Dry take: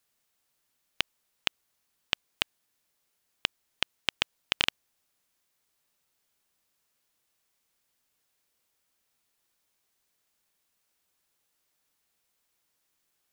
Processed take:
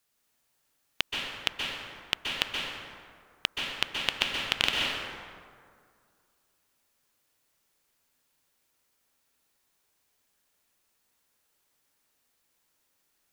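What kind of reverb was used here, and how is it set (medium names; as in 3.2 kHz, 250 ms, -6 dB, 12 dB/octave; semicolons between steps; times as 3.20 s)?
plate-style reverb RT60 2.1 s, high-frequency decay 0.5×, pre-delay 115 ms, DRR -1.5 dB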